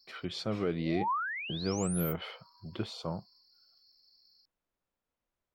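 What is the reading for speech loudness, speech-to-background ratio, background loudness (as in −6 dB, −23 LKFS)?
−35.5 LKFS, 1.0 dB, −36.5 LKFS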